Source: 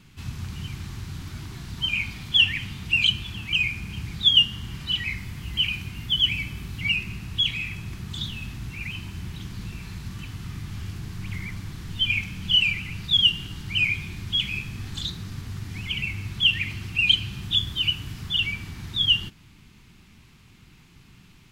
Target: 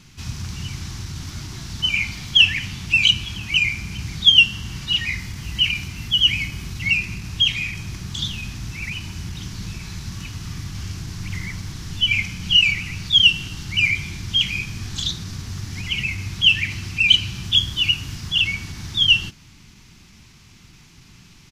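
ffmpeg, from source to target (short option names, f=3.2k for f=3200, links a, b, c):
-af "equalizer=f=5.9k:t=o:w=0.8:g=10,asetrate=42845,aresample=44100,atempo=1.0293,volume=3.5dB"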